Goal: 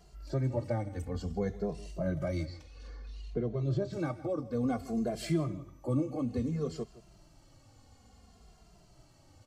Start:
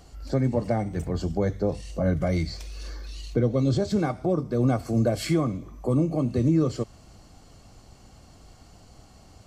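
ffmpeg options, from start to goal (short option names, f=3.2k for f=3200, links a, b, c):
-filter_complex "[0:a]asettb=1/sr,asplit=3[a][b][c];[a]atrim=end=2.454[d];[b]atrim=start=2.45:end=3.93,asetpts=PTS-STARTPTS,afade=t=in:d=0.004:c=qsin,afade=t=out:st=1.476:d=0.004:c=qsin,aemphasis=mode=reproduction:type=75kf[e];[c]atrim=start=3.926[f];[d][e]acrossfade=d=0.004:c1=hsin:c2=qsin[g];[g][f]acrossfade=d=0.004:c1=qsin:c2=hsin,asplit=2[h][i];[i]adelay=163.3,volume=-17dB,highshelf=f=4k:g=-3.67[j];[h][j]amix=inputs=2:normalize=0,asplit=2[k][l];[l]adelay=2.5,afreqshift=-0.58[m];[k][m]amix=inputs=2:normalize=1,volume=-5.5dB"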